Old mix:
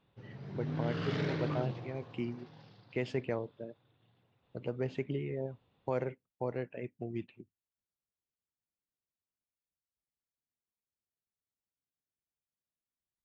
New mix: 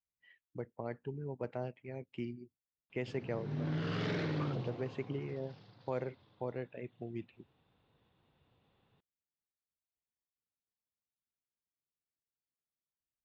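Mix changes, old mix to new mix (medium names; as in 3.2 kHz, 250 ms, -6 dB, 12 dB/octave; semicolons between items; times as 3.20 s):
speech -3.5 dB; background: entry +2.90 s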